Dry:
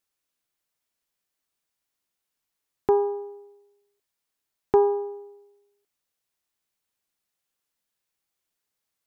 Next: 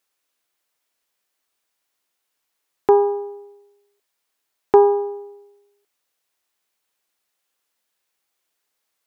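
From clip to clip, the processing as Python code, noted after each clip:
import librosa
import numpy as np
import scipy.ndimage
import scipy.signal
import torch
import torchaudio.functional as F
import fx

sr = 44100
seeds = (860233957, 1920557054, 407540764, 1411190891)

y = fx.bass_treble(x, sr, bass_db=-11, treble_db=-2)
y = F.gain(torch.from_numpy(y), 8.0).numpy()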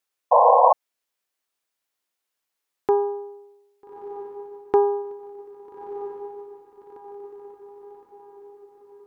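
y = fx.echo_diffused(x, sr, ms=1280, feedback_pct=54, wet_db=-12)
y = fx.spec_paint(y, sr, seeds[0], shape='noise', start_s=0.31, length_s=0.42, low_hz=470.0, high_hz=1100.0, level_db=-8.0)
y = F.gain(torch.from_numpy(y), -6.0).numpy()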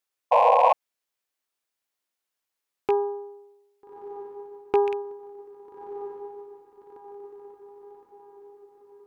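y = fx.rattle_buzz(x, sr, strikes_db=-38.0, level_db=-20.0)
y = F.gain(torch.from_numpy(y), -3.0).numpy()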